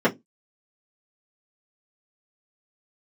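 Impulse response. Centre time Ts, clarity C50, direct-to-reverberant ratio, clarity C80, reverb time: 11 ms, 21.5 dB, -8.5 dB, 31.5 dB, 0.15 s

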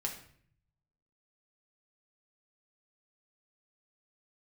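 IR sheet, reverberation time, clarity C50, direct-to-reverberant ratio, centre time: 0.55 s, 8.0 dB, 0.0 dB, 21 ms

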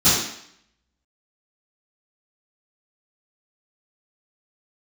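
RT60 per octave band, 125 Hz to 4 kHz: 0.50, 0.70, 0.65, 0.70, 0.70, 0.70 s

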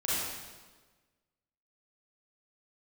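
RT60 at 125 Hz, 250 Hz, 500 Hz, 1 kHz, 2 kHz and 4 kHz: 1.5, 1.5, 1.4, 1.3, 1.2, 1.2 s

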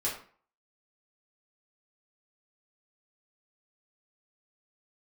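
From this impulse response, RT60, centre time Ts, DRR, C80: 0.45 s, 33 ms, -7.0 dB, 10.5 dB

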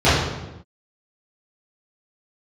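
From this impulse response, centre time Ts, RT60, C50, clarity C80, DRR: 74 ms, not exponential, 0.0 dB, 3.0 dB, -14.5 dB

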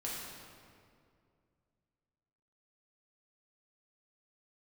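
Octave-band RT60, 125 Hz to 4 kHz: 3.0, 2.7, 2.5, 2.1, 1.8, 1.5 s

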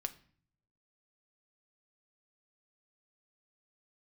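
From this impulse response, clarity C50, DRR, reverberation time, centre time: 17.0 dB, 8.0 dB, 0.50 s, 5 ms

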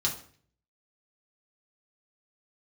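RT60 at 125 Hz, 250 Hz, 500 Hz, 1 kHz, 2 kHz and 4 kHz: 0.80, 0.60, 0.55, 0.45, 0.50, 0.40 s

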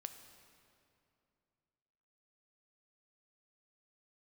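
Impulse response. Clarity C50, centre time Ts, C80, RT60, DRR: 9.0 dB, 27 ms, 10.0 dB, 2.6 s, 7.5 dB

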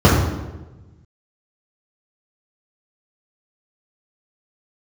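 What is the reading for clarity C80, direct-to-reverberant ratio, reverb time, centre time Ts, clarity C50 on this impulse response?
4.0 dB, -7.5 dB, 1.1 s, 63 ms, 1.5 dB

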